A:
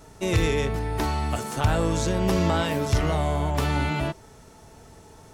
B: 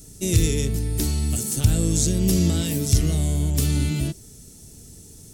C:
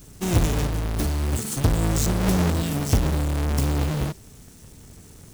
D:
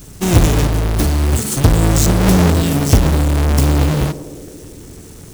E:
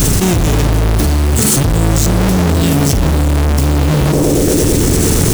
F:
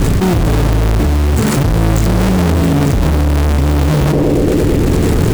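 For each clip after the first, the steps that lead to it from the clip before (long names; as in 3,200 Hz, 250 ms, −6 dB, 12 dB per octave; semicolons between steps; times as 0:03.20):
drawn EQ curve 210 Hz 0 dB, 350 Hz −4 dB, 940 Hz −24 dB, 8,500 Hz +10 dB; level +4.5 dB
each half-wave held at its own peak; level −6 dB
feedback echo with a band-pass in the loop 112 ms, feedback 85%, band-pass 370 Hz, level −11.5 dB; level +9 dB
envelope flattener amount 100%; level −6 dB
running median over 15 samples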